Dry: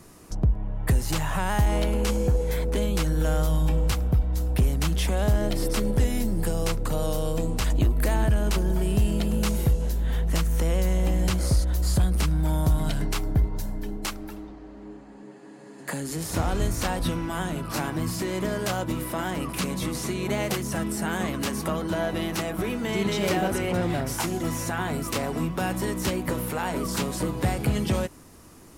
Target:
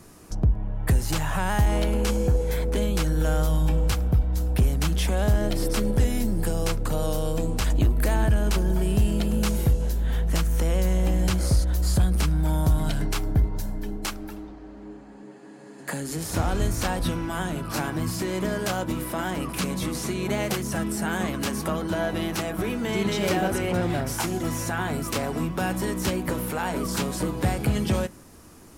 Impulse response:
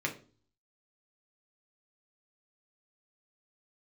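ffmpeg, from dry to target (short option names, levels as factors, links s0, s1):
-filter_complex "[0:a]asplit=2[s0][s1];[1:a]atrim=start_sample=2205,asetrate=35280,aresample=44100[s2];[s1][s2]afir=irnorm=-1:irlink=0,volume=0.075[s3];[s0][s3]amix=inputs=2:normalize=0"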